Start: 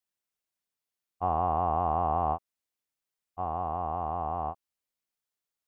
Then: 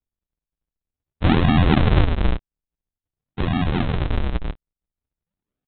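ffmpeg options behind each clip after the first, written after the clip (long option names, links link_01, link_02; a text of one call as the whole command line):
ffmpeg -i in.wav -af "lowshelf=frequency=610:width_type=q:width=3:gain=-9.5,aresample=8000,acrusher=samples=41:mix=1:aa=0.000001:lfo=1:lforange=65.6:lforate=0.49,aresample=44100,volume=8dB" out.wav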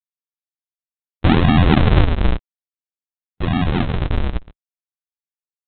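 ffmpeg -i in.wav -af "agate=range=-56dB:threshold=-21dB:ratio=16:detection=peak,volume=3dB" out.wav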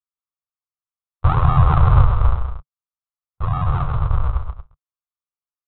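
ffmpeg -i in.wav -filter_complex "[0:a]firequalizer=gain_entry='entry(140,0);entry(210,-28);entry(480,-9);entry(780,-5);entry(1200,6);entry(1700,-15);entry(3400,-18)':delay=0.05:min_phase=1,asplit=2[link_01][link_02];[link_02]aecho=0:1:130|162|232:0.398|0.126|0.224[link_03];[link_01][link_03]amix=inputs=2:normalize=0,volume=1dB" out.wav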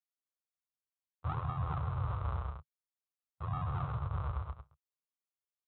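ffmpeg -i in.wav -af "highpass=frequency=72:width=0.5412,highpass=frequency=72:width=1.3066,areverse,acompressor=threshold=-24dB:ratio=10,areverse,volume=-8dB" out.wav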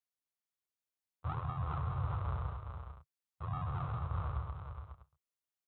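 ffmpeg -i in.wav -af "aecho=1:1:415:0.447,volume=-2dB" out.wav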